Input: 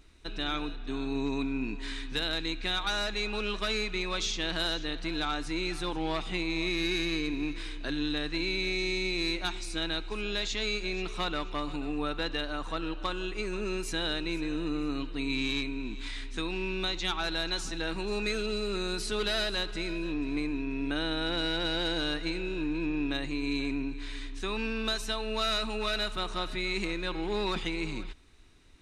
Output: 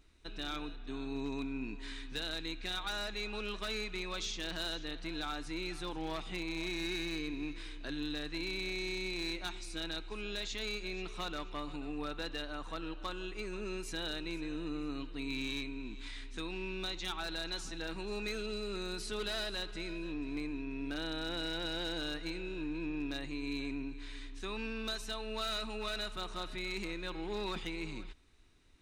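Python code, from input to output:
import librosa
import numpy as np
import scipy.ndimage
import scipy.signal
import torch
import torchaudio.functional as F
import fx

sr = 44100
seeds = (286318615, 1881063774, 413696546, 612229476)

y = 10.0 ** (-22.0 / 20.0) * (np.abs((x / 10.0 ** (-22.0 / 20.0) + 3.0) % 4.0 - 2.0) - 1.0)
y = y * 10.0 ** (-7.0 / 20.0)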